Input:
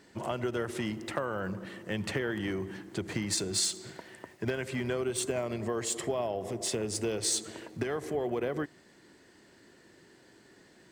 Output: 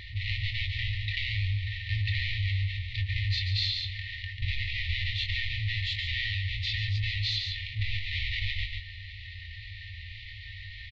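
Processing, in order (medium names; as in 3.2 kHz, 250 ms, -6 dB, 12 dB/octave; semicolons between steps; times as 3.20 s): square wave that keeps the level; elliptic low-pass 4 kHz, stop band 60 dB; bass shelf 190 Hz +9.5 dB; doubling 22 ms -7.5 dB; FFT band-reject 110–1800 Hz; on a send: delay 142 ms -8.5 dB; on the sum: level flattener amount 50%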